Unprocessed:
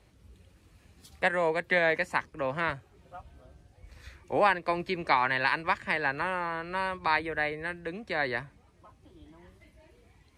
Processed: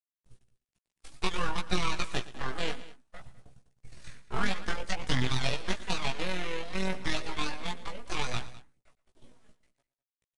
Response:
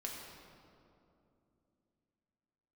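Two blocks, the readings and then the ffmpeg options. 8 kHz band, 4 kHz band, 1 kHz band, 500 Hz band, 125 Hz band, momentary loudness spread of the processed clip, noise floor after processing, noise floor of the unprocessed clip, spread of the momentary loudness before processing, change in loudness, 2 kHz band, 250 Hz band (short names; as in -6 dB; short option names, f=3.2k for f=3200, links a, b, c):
n/a, +5.0 dB, -8.5 dB, -8.5 dB, +5.0 dB, 19 LU, under -85 dBFS, -62 dBFS, 8 LU, -5.0 dB, -8.0 dB, +0.5 dB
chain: -filter_complex "[0:a]aemphasis=mode=production:type=50fm,agate=range=-27dB:threshold=-51dB:ratio=16:detection=peak,lowshelf=f=72:g=8.5,acrossover=split=150[a][b];[b]acompressor=threshold=-23dB:ratio=6[c];[a][c]amix=inputs=2:normalize=0,aeval=exprs='abs(val(0))':c=same,tremolo=f=41:d=0.571,aphaser=in_gain=1:out_gain=1:delay=4.9:decay=0.38:speed=0.58:type=triangular,acrusher=bits=11:mix=0:aa=0.000001,asplit=2[d][e];[e]adelay=16,volume=-4dB[f];[d][f]amix=inputs=2:normalize=0,aecho=1:1:115|204:0.133|0.119,aresample=22050,aresample=44100"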